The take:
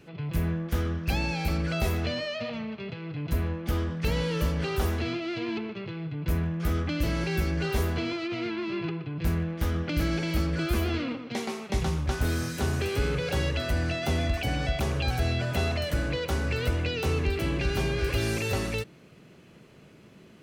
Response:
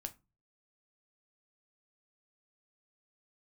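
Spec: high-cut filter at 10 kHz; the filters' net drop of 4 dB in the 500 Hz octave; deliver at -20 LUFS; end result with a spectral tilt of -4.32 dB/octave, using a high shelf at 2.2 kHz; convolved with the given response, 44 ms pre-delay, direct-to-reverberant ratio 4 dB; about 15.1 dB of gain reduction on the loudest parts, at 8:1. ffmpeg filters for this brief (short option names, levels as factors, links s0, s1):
-filter_complex "[0:a]lowpass=10000,equalizer=f=500:t=o:g=-6,highshelf=f=2200:g=8,acompressor=threshold=0.0126:ratio=8,asplit=2[s0][s1];[1:a]atrim=start_sample=2205,adelay=44[s2];[s1][s2]afir=irnorm=-1:irlink=0,volume=0.891[s3];[s0][s3]amix=inputs=2:normalize=0,volume=9.44"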